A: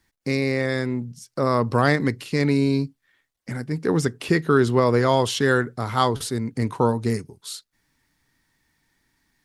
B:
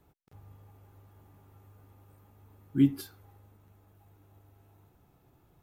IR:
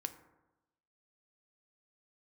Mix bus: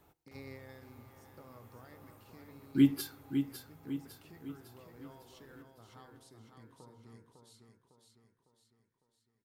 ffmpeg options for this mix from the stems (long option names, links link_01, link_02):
-filter_complex "[0:a]acompressor=threshold=-26dB:ratio=6,volume=-19dB,asplit=3[link_01][link_02][link_03];[link_02]volume=-7.5dB[link_04];[link_03]volume=-14dB[link_05];[1:a]lowshelf=frequency=290:gain=-9,volume=1.5dB,asplit=4[link_06][link_07][link_08][link_09];[link_07]volume=-7.5dB[link_10];[link_08]volume=-6dB[link_11];[link_09]apad=whole_len=420913[link_12];[link_01][link_12]sidechaingate=range=-33dB:threshold=-58dB:ratio=16:detection=peak[link_13];[2:a]atrim=start_sample=2205[link_14];[link_04][link_10]amix=inputs=2:normalize=0[link_15];[link_15][link_14]afir=irnorm=-1:irlink=0[link_16];[link_05][link_11]amix=inputs=2:normalize=0,aecho=0:1:554|1108|1662|2216|2770|3324|3878:1|0.48|0.23|0.111|0.0531|0.0255|0.0122[link_17];[link_13][link_06][link_16][link_17]amix=inputs=4:normalize=0"